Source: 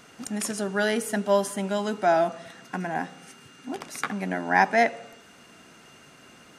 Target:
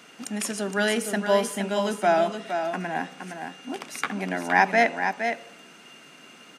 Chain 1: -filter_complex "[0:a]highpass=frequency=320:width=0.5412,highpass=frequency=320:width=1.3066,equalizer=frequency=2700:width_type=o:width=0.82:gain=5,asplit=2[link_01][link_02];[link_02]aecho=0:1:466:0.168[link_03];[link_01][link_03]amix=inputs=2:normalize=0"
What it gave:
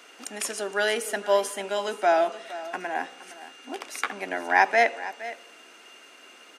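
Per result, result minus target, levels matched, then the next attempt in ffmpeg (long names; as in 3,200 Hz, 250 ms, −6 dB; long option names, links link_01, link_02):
125 Hz band −16.5 dB; echo-to-direct −8.5 dB
-filter_complex "[0:a]highpass=frequency=160:width=0.5412,highpass=frequency=160:width=1.3066,equalizer=frequency=2700:width_type=o:width=0.82:gain=5,asplit=2[link_01][link_02];[link_02]aecho=0:1:466:0.168[link_03];[link_01][link_03]amix=inputs=2:normalize=0"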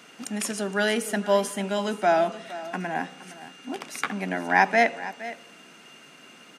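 echo-to-direct −8.5 dB
-filter_complex "[0:a]highpass=frequency=160:width=0.5412,highpass=frequency=160:width=1.3066,equalizer=frequency=2700:width_type=o:width=0.82:gain=5,asplit=2[link_01][link_02];[link_02]aecho=0:1:466:0.447[link_03];[link_01][link_03]amix=inputs=2:normalize=0"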